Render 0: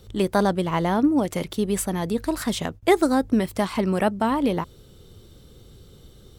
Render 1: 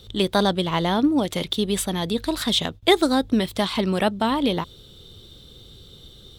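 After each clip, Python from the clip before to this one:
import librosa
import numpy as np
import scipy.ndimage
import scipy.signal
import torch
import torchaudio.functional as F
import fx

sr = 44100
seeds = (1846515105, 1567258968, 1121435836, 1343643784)

y = fx.peak_eq(x, sr, hz=3600.0, db=14.5, octaves=0.59)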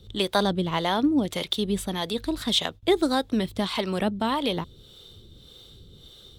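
y = fx.harmonic_tremolo(x, sr, hz=1.7, depth_pct=70, crossover_hz=420.0)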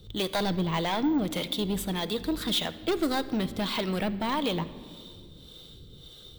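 y = 10.0 ** (-22.0 / 20.0) * np.tanh(x / 10.0 ** (-22.0 / 20.0))
y = fx.room_shoebox(y, sr, seeds[0], volume_m3=3500.0, walls='mixed', distance_m=0.57)
y = np.repeat(y[::2], 2)[:len(y)]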